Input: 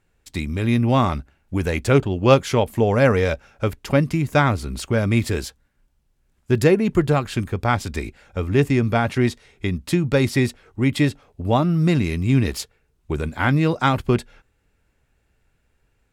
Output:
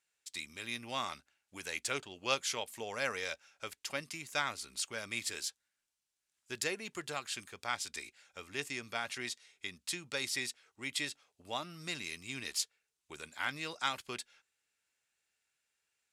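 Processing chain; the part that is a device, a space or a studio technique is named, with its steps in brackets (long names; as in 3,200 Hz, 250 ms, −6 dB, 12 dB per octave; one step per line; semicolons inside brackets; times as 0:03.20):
piezo pickup straight into a mixer (low-pass filter 7,800 Hz 12 dB per octave; first difference)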